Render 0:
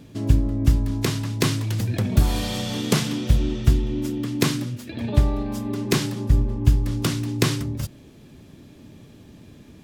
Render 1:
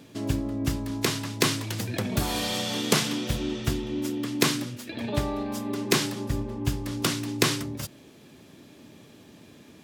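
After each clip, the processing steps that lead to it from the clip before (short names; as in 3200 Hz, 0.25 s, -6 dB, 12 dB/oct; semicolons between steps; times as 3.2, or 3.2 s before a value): HPF 380 Hz 6 dB/oct; gain +1.5 dB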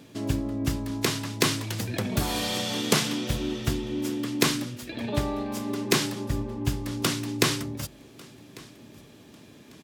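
feedback echo 1.147 s, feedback 31%, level -23 dB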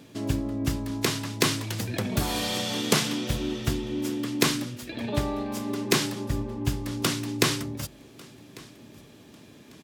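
nothing audible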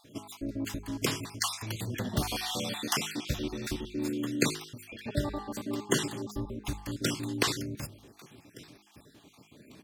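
random spectral dropouts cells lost 44%; de-hum 51.59 Hz, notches 9; gain -2.5 dB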